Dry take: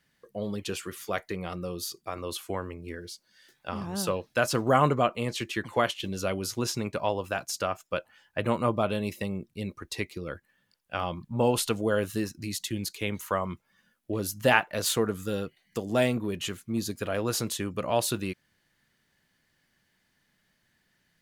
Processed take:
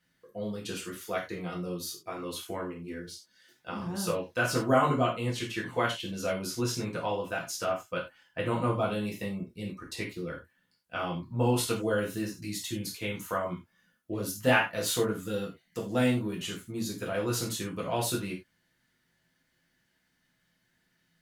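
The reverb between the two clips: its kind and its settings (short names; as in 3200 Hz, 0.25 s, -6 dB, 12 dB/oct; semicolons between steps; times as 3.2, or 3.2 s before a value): non-linear reverb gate 0.12 s falling, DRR -3.5 dB; gain -7 dB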